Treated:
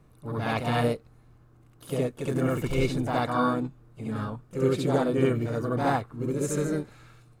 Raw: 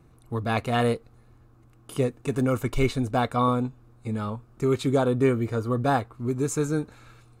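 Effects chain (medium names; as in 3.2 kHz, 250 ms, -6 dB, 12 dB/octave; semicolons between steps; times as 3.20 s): harmony voices +4 st -9 dB, +5 st -16 dB; reverse echo 68 ms -3.5 dB; trim -4 dB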